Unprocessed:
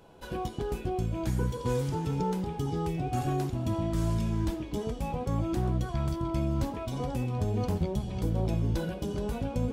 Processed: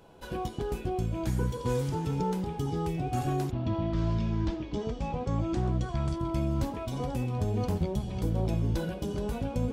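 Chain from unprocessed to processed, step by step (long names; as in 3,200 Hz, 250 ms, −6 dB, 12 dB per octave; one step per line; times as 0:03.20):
0:03.50–0:06.18: low-pass filter 4,100 Hz → 9,400 Hz 24 dB per octave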